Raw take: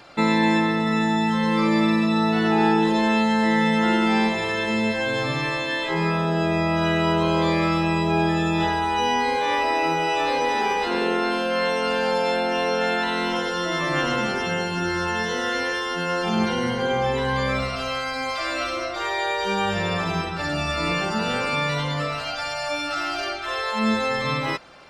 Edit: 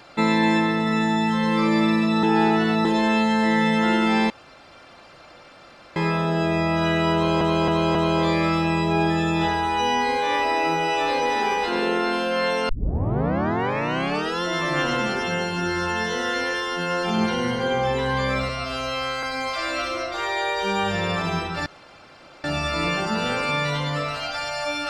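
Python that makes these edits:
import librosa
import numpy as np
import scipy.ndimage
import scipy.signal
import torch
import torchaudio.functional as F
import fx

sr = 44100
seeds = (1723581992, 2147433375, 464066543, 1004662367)

y = fx.edit(x, sr, fx.reverse_span(start_s=2.23, length_s=0.62),
    fx.room_tone_fill(start_s=4.3, length_s=1.66),
    fx.repeat(start_s=7.14, length_s=0.27, count=4),
    fx.tape_start(start_s=11.88, length_s=1.74),
    fx.stretch_span(start_s=17.68, length_s=0.37, factor=2.0),
    fx.insert_room_tone(at_s=20.48, length_s=0.78), tone=tone)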